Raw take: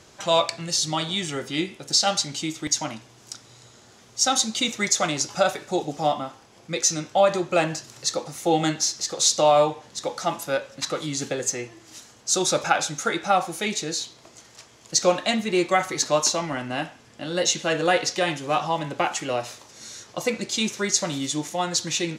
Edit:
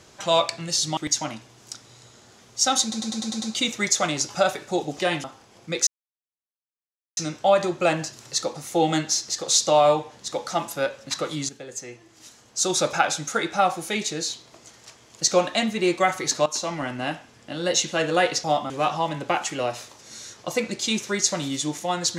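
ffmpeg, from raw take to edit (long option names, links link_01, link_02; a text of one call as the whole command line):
ffmpeg -i in.wav -filter_complex "[0:a]asplit=15[link_01][link_02][link_03][link_04][link_05][link_06][link_07][link_08][link_09][link_10][link_11][link_12][link_13][link_14][link_15];[link_01]atrim=end=0.972[link_16];[link_02]atrim=start=2.568:end=4.522[link_17];[link_03]atrim=start=4.418:end=4.522[link_18];[link_04]atrim=start=4.418:end=4.522[link_19];[link_05]atrim=start=4.418:end=4.522[link_20];[link_06]atrim=start=4.418:end=4.522[link_21];[link_07]atrim=start=4.418:end=4.522[link_22];[link_08]atrim=start=4.418:end=5.992[link_23];[link_09]atrim=start=18.148:end=18.402[link_24];[link_10]atrim=start=6.248:end=6.88,asetpts=PTS-STARTPTS,afade=type=out:start_time=0.628:duration=0.004:curve=hsin,apad=pad_dur=1.3[link_25];[link_11]atrim=start=6.88:end=11.2,asetpts=PTS-STARTPTS,afade=type=in:duration=0.004:curve=hsin,afade=type=out:start_time=4.316:duration=0.004:curve=hsin:silence=0.177828[link_26];[link_12]atrim=start=11.2:end=16.17,asetpts=PTS-STARTPTS,afade=type=in:duration=1.35:silence=0.177828,afade=type=out:start_time=4.966:duration=0.004:curve=hsin:silence=0.158489[link_27];[link_13]atrim=start=16.17:end=18.152,asetpts=PTS-STARTPTS,afade=type=in:duration=0.42:curve=qsin:silence=0.158489[link_28];[link_14]atrim=start=5.988:end=6.252[link_29];[link_15]atrim=start=18.398[link_30];[link_16][link_17]acrossfade=duration=0.004:curve1=hsin:curve2=hsin[link_31];[link_31][link_18]acrossfade=duration=0.004:curve1=hsin:curve2=hsin[link_32];[link_32][link_19]acrossfade=duration=0.004:curve1=hsin:curve2=hsin[link_33];[link_33][link_20]acrossfade=duration=0.004:curve1=hsin:curve2=hsin[link_34];[link_34][link_21]acrossfade=duration=0.004:curve1=hsin:curve2=hsin[link_35];[link_35][link_22]acrossfade=duration=0.004:curve1=hsin:curve2=hsin[link_36];[link_36][link_23]acrossfade=duration=0.004:curve1=hsin:curve2=hsin[link_37];[link_37][link_24]acrossfade=duration=0.004:curve1=hsin:curve2=hsin[link_38];[link_25][link_26][link_27][link_28]concat=n=4:v=0:a=1[link_39];[link_38][link_39]acrossfade=duration=0.004:curve1=hsin:curve2=hsin[link_40];[link_40][link_29]acrossfade=duration=0.004:curve1=hsin:curve2=hsin[link_41];[link_41][link_30]acrossfade=duration=0.004:curve1=hsin:curve2=hsin" out.wav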